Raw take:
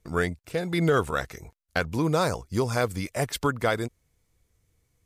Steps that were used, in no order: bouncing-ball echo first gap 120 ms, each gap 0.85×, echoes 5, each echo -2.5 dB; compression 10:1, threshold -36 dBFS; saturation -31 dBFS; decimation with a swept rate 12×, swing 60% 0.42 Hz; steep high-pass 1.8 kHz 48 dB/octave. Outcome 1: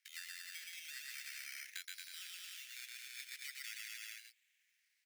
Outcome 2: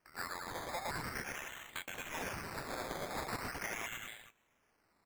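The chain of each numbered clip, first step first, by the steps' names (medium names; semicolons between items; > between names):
decimation with a swept rate > bouncing-ball echo > compression > steep high-pass > saturation; steep high-pass > compression > saturation > bouncing-ball echo > decimation with a swept rate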